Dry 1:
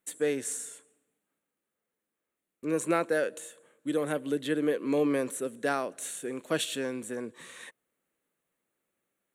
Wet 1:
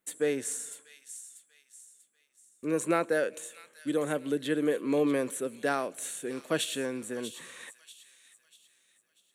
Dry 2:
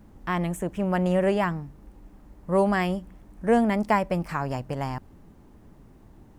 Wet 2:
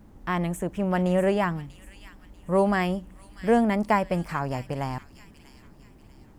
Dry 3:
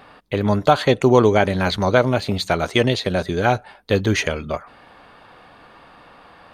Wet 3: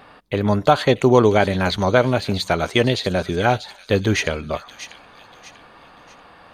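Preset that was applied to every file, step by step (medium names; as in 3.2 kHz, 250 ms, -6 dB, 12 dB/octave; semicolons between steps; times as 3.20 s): feedback echo behind a high-pass 641 ms, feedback 39%, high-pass 3 kHz, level -9 dB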